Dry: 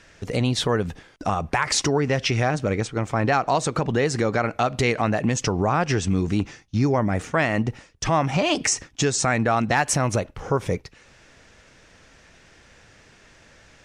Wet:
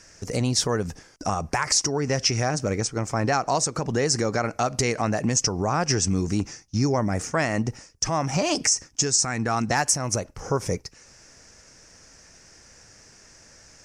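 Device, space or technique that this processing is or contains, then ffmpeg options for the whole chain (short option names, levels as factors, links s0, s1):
over-bright horn tweeter: -filter_complex "[0:a]asettb=1/sr,asplit=3[s0][s1][s2];[s0]atrim=end=9.074[s3];[s1]atrim=start=9.07:end=9.68,asetpts=PTS-STARTPTS,afade=t=in:d=0.004:c=qsin,afade=t=out:st=0.606:d=0.004:c=qsin,equalizer=f=590:w=3.8:g=-8[s4];[s2]atrim=start=9.676[s5];[s3][s4]acrossfade=d=0.004:c1=hsin:c2=qsin[s6];[s6][s5]acrossfade=d=0.004:c1=qsin:c2=hsin,highshelf=f=4400:t=q:w=3:g=7,alimiter=limit=0.422:level=0:latency=1:release=317,volume=0.794"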